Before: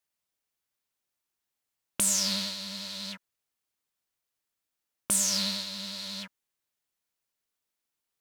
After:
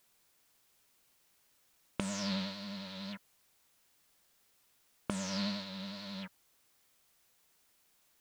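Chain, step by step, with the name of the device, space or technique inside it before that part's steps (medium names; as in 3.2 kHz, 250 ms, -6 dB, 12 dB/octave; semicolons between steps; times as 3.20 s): cassette deck with a dirty head (tape spacing loss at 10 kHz 31 dB; wow and flutter; white noise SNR 27 dB); trim +2 dB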